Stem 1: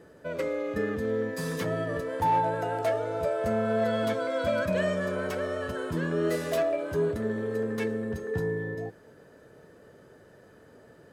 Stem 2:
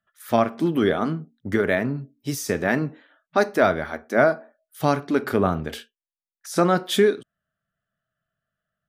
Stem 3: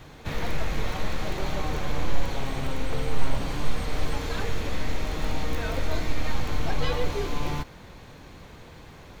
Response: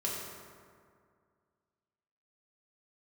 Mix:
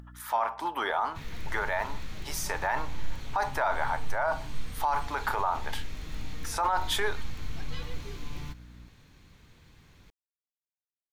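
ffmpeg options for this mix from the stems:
-filter_complex "[1:a]highpass=f=900:t=q:w=9.5,aeval=exprs='val(0)+0.00178*(sin(2*PI*60*n/s)+sin(2*PI*2*60*n/s)/2+sin(2*PI*3*60*n/s)/3+sin(2*PI*4*60*n/s)/4+sin(2*PI*5*60*n/s)/5)':c=same,acompressor=mode=upward:threshold=-34dB:ratio=2.5,volume=-3.5dB[a];[2:a]equalizer=f=620:w=0.73:g=-11,adelay=900,volume=-8.5dB[b];[a][b]amix=inputs=2:normalize=0,alimiter=limit=-18dB:level=0:latency=1:release=20"

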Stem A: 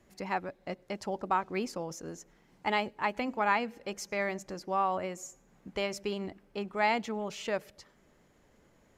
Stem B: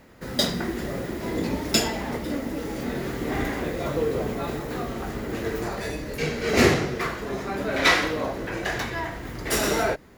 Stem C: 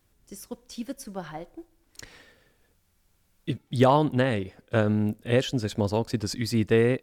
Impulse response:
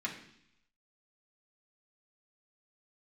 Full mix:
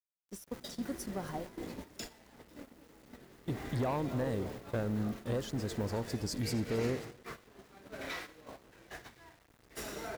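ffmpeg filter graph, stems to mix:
-filter_complex "[1:a]adelay=250,volume=-16.5dB[a];[2:a]equalizer=f=2.5k:w=1.4:g=-11.5,acompressor=threshold=-30dB:ratio=2.5,asoftclip=type=tanh:threshold=-26.5dB,volume=-1dB,asplit=2[b][c];[c]volume=-16.5dB[d];[a]alimiter=level_in=6.5dB:limit=-24dB:level=0:latency=1:release=389,volume=-6.5dB,volume=0dB[e];[d]aecho=0:1:270|540|810|1080|1350|1620|1890|2160:1|0.52|0.27|0.141|0.0731|0.038|0.0198|0.0103[f];[b][e][f]amix=inputs=3:normalize=0,aeval=exprs='val(0)*gte(abs(val(0)),0.00422)':c=same,agate=range=-11dB:threshold=-43dB:ratio=16:detection=peak"

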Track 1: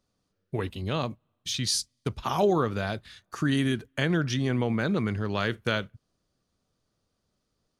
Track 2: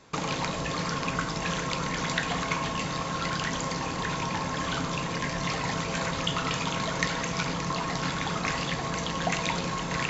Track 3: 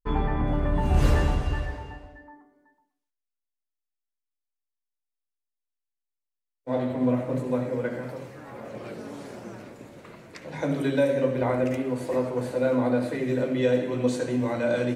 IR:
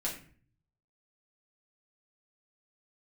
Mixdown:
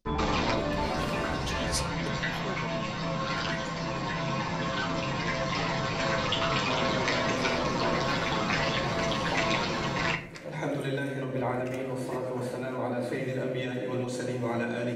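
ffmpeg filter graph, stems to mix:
-filter_complex "[0:a]equalizer=f=1.2k:w=1.4:g=-12.5,aeval=exprs='val(0)*pow(10,-22*(0.5-0.5*cos(2*PI*6.8*n/s))/20)':c=same,volume=-2.5dB,afade=t=out:st=2.19:d=0.59:silence=0.237137,afade=t=out:st=3.85:d=0.51:silence=0.375837,asplit=3[a][b][c];[b]volume=-10dB[d];[1:a]equalizer=f=6.8k:t=o:w=0.21:g=-15,asplit=2[e][f];[f]adelay=8.2,afreqshift=-2.7[g];[e][g]amix=inputs=2:normalize=1,adelay=50,volume=1dB,asplit=2[h][i];[i]volume=-4.5dB[j];[2:a]alimiter=limit=-18dB:level=0:latency=1:release=170,volume=-3dB,asplit=2[k][l];[l]volume=-8dB[m];[c]apad=whole_len=447730[n];[h][n]sidechaincompress=threshold=-55dB:ratio=8:attack=33:release=612[o];[3:a]atrim=start_sample=2205[p];[d][j][m]amix=inputs=3:normalize=0[q];[q][p]afir=irnorm=-1:irlink=0[r];[a][o][k][r]amix=inputs=4:normalize=0,afftfilt=real='re*lt(hypot(re,im),0.316)':imag='im*lt(hypot(re,im),0.316)':win_size=1024:overlap=0.75"

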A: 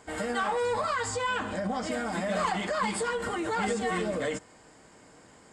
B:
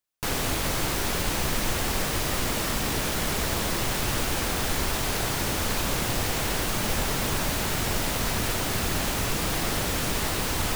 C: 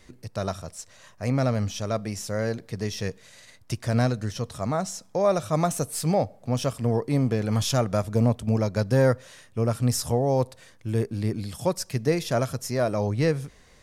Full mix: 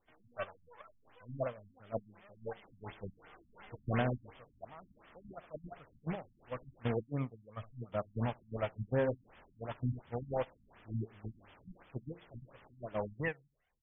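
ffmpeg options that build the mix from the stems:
-filter_complex "[0:a]highshelf=f=3.3k:g=11.5,aeval=exprs='max(val(0),0)':c=same,volume=-3dB[a];[1:a]highshelf=f=7k:g=-9.5,adelay=2400,volume=-8.5dB,asplit=3[b][c][d];[b]atrim=end=6.95,asetpts=PTS-STARTPTS,afade=t=out:st=6.946:d=0.004:c=hsin[e];[c]atrim=start=6.95:end=7.92,asetpts=PTS-STARTPTS,volume=0[f];[d]atrim=start=7.92,asetpts=PTS-STARTPTS,afade=t=in:d=0.004:c=hsin[g];[e][f][g]concat=n=3:v=0:a=1[h];[2:a]aphaser=in_gain=1:out_gain=1:delay=2:decay=0.59:speed=1:type=triangular,volume=-4dB,asplit=2[i][j];[j]volume=-14.5dB[k];[h][i]amix=inputs=2:normalize=0,equalizer=f=8.3k:w=1.5:g=12.5,alimiter=limit=-16dB:level=0:latency=1:release=240,volume=0dB[l];[k]aecho=0:1:72|144|216|288:1|0.26|0.0676|0.0176[m];[a][l][m]amix=inputs=3:normalize=0,agate=range=-19dB:threshold=-24dB:ratio=16:detection=peak,lowshelf=f=370:g=-12,afftfilt=real='re*lt(b*sr/1024,250*pow(3600/250,0.5+0.5*sin(2*PI*2.8*pts/sr)))':imag='im*lt(b*sr/1024,250*pow(3600/250,0.5+0.5*sin(2*PI*2.8*pts/sr)))':win_size=1024:overlap=0.75"

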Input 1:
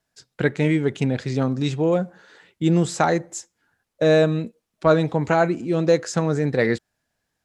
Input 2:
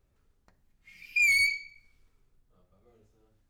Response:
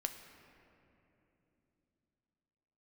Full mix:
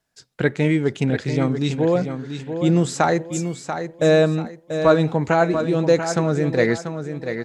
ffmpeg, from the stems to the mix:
-filter_complex "[0:a]volume=1dB,asplit=3[a][b][c];[b]volume=-8.5dB[d];[1:a]tremolo=f=0.96:d=0.99,adelay=2150,volume=-11dB[e];[c]apad=whole_len=248769[f];[e][f]sidechaincompress=threshold=-37dB:ratio=8:attack=16:release=306[g];[d]aecho=0:1:688|1376|2064|2752|3440:1|0.32|0.102|0.0328|0.0105[h];[a][g][h]amix=inputs=3:normalize=0"

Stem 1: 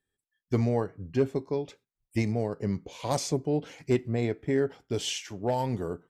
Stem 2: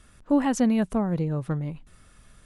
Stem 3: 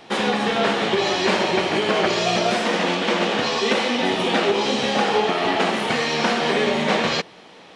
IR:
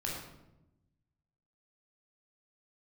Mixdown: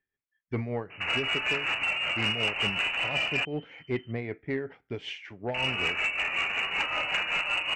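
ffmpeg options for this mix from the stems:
-filter_complex "[0:a]lowpass=f=2.2k:t=q:w=3,volume=-3.5dB[a];[1:a]adelay=1650,volume=-2dB[b];[2:a]adelay=900,volume=-1dB,asplit=3[c][d][e];[c]atrim=end=3.45,asetpts=PTS-STARTPTS,afade=t=out:st=3.446:d=0.004:c=hsin[f];[d]atrim=start=3.45:end=5.54,asetpts=PTS-STARTPTS,volume=0[g];[e]atrim=start=5.54,asetpts=PTS-STARTPTS,afade=t=in:d=0.004:c=hsin[h];[f][g][h]concat=n=3:v=0:a=1[i];[b][i]amix=inputs=2:normalize=0,lowpass=f=2.6k:t=q:w=0.5098,lowpass=f=2.6k:t=q:w=0.6013,lowpass=f=2.6k:t=q:w=0.9,lowpass=f=2.6k:t=q:w=2.563,afreqshift=-3100,acompressor=threshold=-22dB:ratio=10,volume=0dB[j];[a][j]amix=inputs=2:normalize=0,tremolo=f=5.3:d=0.55,asoftclip=type=tanh:threshold=-18.5dB"

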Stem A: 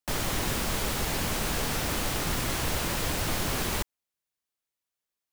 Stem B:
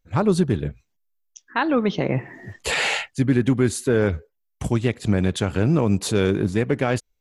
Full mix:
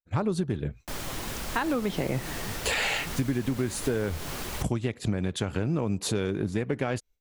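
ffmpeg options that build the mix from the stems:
-filter_complex "[0:a]flanger=delay=0.9:depth=7:regen=63:speed=1.6:shape=triangular,adelay=800,volume=-1.5dB[a];[1:a]agate=range=-33dB:threshold=-42dB:ratio=3:detection=peak,volume=-0.5dB[b];[a][b]amix=inputs=2:normalize=0,acompressor=threshold=-24dB:ratio=6"

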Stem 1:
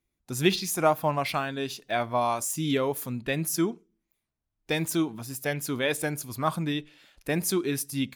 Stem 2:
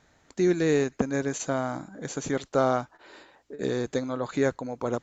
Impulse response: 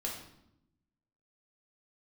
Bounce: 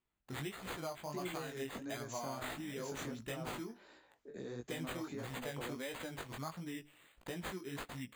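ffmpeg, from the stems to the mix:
-filter_complex "[0:a]highshelf=f=8.3k:g=7.5,acompressor=threshold=-32dB:ratio=6,acrusher=samples=8:mix=1:aa=0.000001,volume=-5.5dB[a];[1:a]alimiter=limit=-20.5dB:level=0:latency=1:release=79,acrossover=split=230[b][c];[c]acompressor=threshold=-34dB:ratio=2[d];[b][d]amix=inputs=2:normalize=0,adelay=750,volume=-9dB[e];[a][e]amix=inputs=2:normalize=0,flanger=delay=16:depth=6.4:speed=1.5"

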